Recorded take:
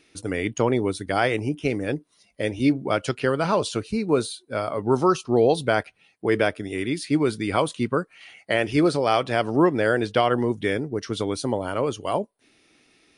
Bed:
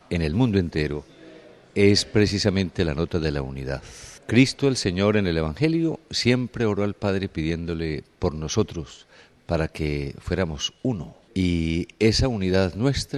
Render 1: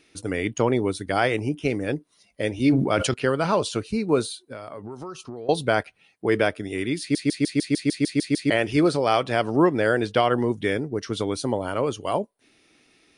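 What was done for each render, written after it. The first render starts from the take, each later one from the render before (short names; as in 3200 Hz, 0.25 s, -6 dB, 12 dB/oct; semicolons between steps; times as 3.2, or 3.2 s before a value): 2.54–3.14 sustainer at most 49 dB/s; 4.46–5.49 compressor 10:1, threshold -32 dBFS; 7 stutter in place 0.15 s, 10 plays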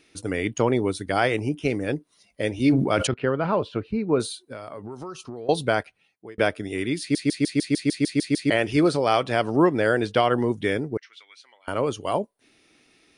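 3.07–4.2 air absorption 410 m; 5.65–6.38 fade out; 10.97–11.68 ladder band-pass 2400 Hz, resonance 55%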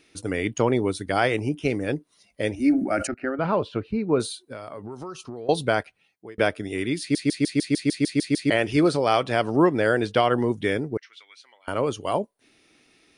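2.55–3.39 fixed phaser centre 680 Hz, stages 8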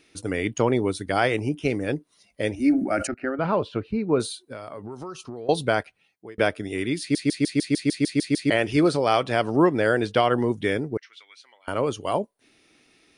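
nothing audible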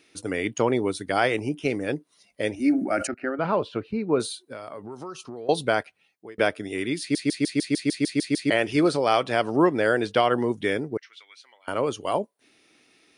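HPF 180 Hz 6 dB/oct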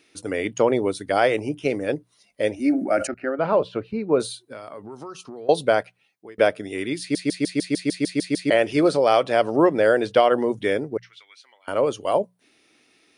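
notches 60/120/180 Hz; dynamic EQ 560 Hz, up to +7 dB, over -36 dBFS, Q 2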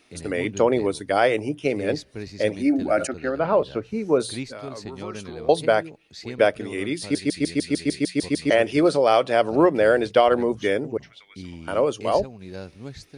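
add bed -16 dB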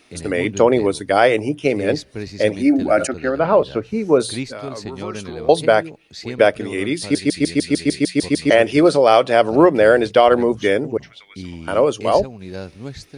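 gain +5.5 dB; limiter -1 dBFS, peak gain reduction 2 dB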